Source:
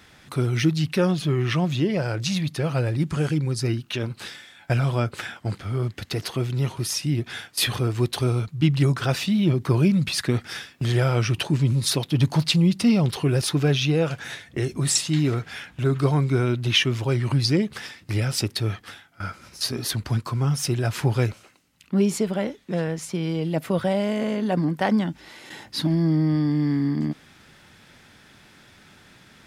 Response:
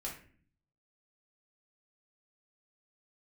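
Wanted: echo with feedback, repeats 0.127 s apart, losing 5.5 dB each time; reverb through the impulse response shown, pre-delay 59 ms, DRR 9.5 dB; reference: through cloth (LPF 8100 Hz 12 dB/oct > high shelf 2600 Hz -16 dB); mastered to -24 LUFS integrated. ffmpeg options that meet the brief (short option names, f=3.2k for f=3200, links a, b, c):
-filter_complex "[0:a]aecho=1:1:127|254|381|508|635|762|889:0.531|0.281|0.149|0.079|0.0419|0.0222|0.0118,asplit=2[a][b];[1:a]atrim=start_sample=2205,adelay=59[c];[b][c]afir=irnorm=-1:irlink=0,volume=-9dB[d];[a][d]amix=inputs=2:normalize=0,lowpass=8.1k,highshelf=f=2.6k:g=-16,volume=-1.5dB"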